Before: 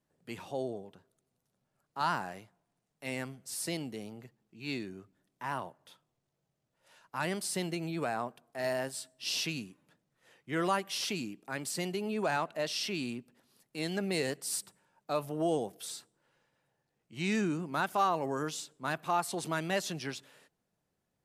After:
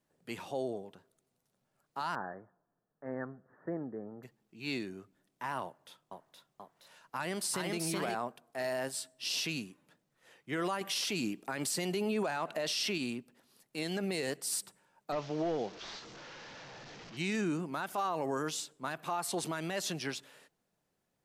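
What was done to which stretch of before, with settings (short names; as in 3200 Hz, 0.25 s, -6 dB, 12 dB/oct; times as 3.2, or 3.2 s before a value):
2.15–4.23 rippled Chebyshev low-pass 1800 Hz, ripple 3 dB
5.63–8.15 echoes that change speed 0.483 s, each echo +1 st, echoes 2
10.81–12.98 gain +5.5 dB
15.12–17.17 delta modulation 32 kbps, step -45 dBFS
whole clip: bell 68 Hz -5.5 dB 2.6 oct; limiter -27 dBFS; gain +2 dB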